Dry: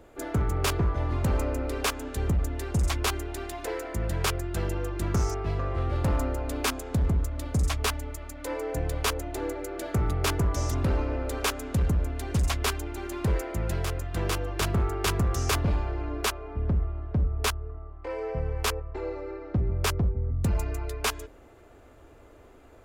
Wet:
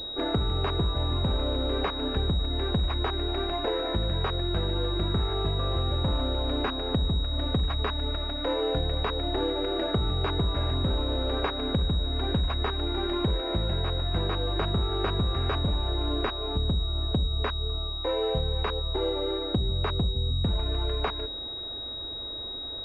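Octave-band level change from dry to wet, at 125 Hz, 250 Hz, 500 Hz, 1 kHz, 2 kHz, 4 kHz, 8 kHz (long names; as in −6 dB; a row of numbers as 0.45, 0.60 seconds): −0.5 dB, +1.5 dB, +2.5 dB, +0.5 dB, −4.0 dB, +8.0 dB, below −25 dB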